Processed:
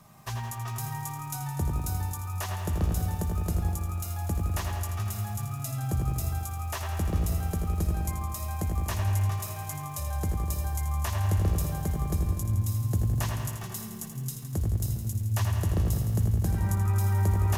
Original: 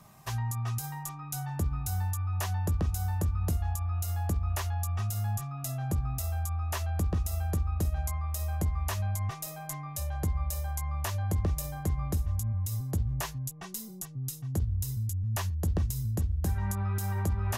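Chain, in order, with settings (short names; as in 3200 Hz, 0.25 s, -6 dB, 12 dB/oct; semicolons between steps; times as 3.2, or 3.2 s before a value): analogue delay 0.1 s, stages 2048, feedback 59%, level -5 dB; lo-fi delay 82 ms, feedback 80%, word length 9-bit, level -8.5 dB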